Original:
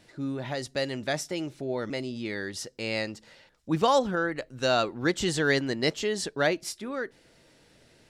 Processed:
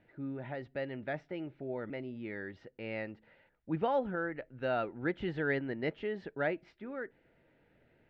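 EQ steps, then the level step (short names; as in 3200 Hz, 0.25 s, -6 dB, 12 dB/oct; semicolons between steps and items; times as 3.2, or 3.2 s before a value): LPF 2400 Hz 24 dB/oct; notch 1100 Hz, Q 5.2; -7.5 dB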